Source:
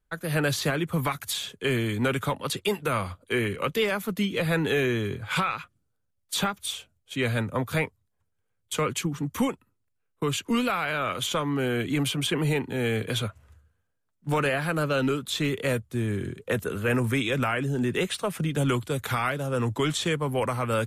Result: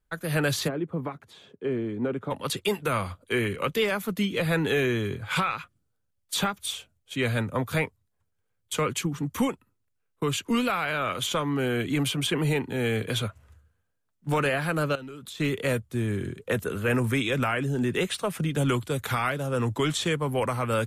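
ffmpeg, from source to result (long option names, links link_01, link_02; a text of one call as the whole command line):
ffmpeg -i in.wav -filter_complex "[0:a]asplit=3[link_01][link_02][link_03];[link_01]afade=type=out:start_time=0.67:duration=0.02[link_04];[link_02]bandpass=frequency=340:width_type=q:width=0.93,afade=type=in:start_time=0.67:duration=0.02,afade=type=out:start_time=2.3:duration=0.02[link_05];[link_03]afade=type=in:start_time=2.3:duration=0.02[link_06];[link_04][link_05][link_06]amix=inputs=3:normalize=0,asettb=1/sr,asplit=3[link_07][link_08][link_09];[link_07]atrim=end=14.954[link_10];[link_08]atrim=start=14.95:end=15.4,asetpts=PTS-STARTPTS,afade=type=in:duration=0.004:curve=qsin,afade=type=out:start_time=0.446:duration=0.004:curve=qsin,acompressor=threshold=-37dB:ratio=12:attack=3.2:release=140:knee=1:detection=peak[link_11];[link_09]atrim=start=15.396[link_12];[link_10][link_11]acrossfade=duration=0.004:curve1=hsin:curve2=qsin[link_13];[link_13][link_12]acrossfade=duration=0.004:curve1=qsin:curve2=hsin" out.wav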